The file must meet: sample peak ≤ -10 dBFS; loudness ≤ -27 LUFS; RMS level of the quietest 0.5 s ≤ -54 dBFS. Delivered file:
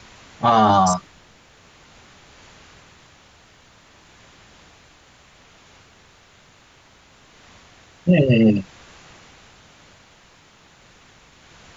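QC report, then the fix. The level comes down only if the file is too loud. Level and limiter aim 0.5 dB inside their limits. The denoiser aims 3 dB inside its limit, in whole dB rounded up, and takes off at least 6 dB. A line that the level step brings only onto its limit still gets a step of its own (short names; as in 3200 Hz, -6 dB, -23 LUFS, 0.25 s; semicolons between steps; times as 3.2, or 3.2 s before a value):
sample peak -5.5 dBFS: fail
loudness -17.5 LUFS: fail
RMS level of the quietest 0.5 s -52 dBFS: fail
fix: gain -10 dB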